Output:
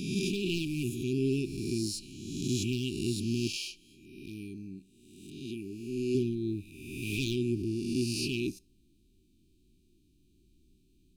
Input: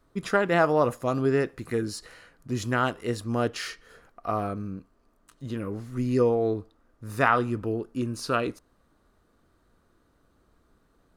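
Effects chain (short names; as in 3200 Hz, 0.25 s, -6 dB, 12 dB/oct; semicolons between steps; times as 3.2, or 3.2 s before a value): spectral swells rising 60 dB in 1.32 s; 3.56–6.15 tone controls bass -10 dB, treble -2 dB; overloaded stage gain 15.5 dB; brick-wall FIR band-stop 400–2300 Hz; resonator 190 Hz, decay 0.31 s, harmonics all, mix 30%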